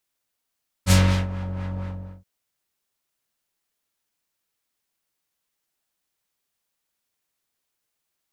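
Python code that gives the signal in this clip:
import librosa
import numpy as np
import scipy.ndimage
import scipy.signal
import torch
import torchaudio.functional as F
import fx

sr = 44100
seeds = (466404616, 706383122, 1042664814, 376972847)

y = fx.sub_patch_wobble(sr, seeds[0], note=42, wave='triangle', wave2='square', interval_st=12, level2_db=-9.5, sub_db=-15.0, noise_db=-3, kind='lowpass', cutoff_hz=570.0, q=0.78, env_oct=3.5, env_decay_s=0.51, env_sustain_pct=30, attack_ms=52.0, decay_s=0.36, sustain_db=-15, release_s=0.44, note_s=0.94, lfo_hz=4.2, wobble_oct=0.6)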